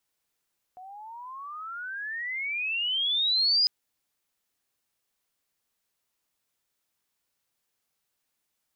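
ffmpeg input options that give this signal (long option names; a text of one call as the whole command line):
ffmpeg -f lavfi -i "aevalsrc='pow(10,(-19+23*(t/2.9-1))/20)*sin(2*PI*724*2.9/(33.5*log(2)/12)*(exp(33.5*log(2)/12*t/2.9)-1))':duration=2.9:sample_rate=44100" out.wav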